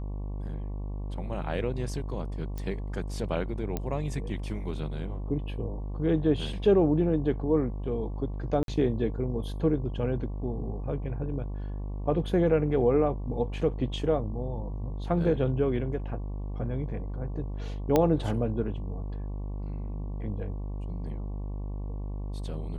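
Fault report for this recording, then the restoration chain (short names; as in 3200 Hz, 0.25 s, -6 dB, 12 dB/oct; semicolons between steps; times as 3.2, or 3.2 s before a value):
buzz 50 Hz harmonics 23 -34 dBFS
2.58 pop -23 dBFS
3.77 pop -17 dBFS
8.63–8.68 gap 52 ms
17.96 pop -10 dBFS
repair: de-click; de-hum 50 Hz, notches 23; interpolate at 8.63, 52 ms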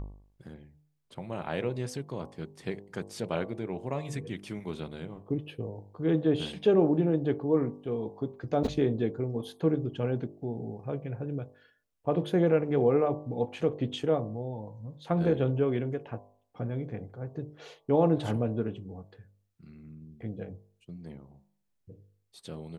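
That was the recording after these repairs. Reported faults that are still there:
none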